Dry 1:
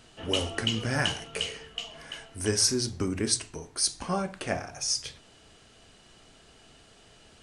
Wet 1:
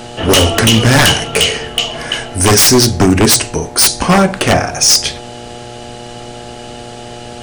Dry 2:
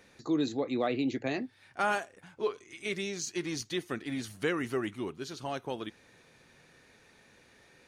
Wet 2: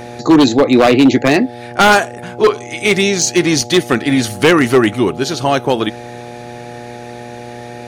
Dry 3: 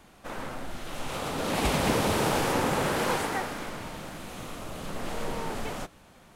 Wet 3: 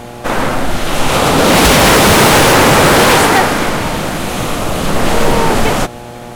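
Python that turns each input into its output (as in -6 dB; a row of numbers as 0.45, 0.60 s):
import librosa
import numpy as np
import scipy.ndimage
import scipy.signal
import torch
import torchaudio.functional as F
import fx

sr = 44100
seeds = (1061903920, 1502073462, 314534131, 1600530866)

y = 10.0 ** (-24.5 / 20.0) * (np.abs((x / 10.0 ** (-24.5 / 20.0) + 3.0) % 4.0 - 2.0) - 1.0)
y = fx.dmg_buzz(y, sr, base_hz=120.0, harmonics=7, level_db=-53.0, tilt_db=0, odd_only=False)
y = librosa.util.normalize(y) * 10.0 ** (-1.5 / 20.0)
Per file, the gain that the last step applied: +22.0, +22.0, +22.0 dB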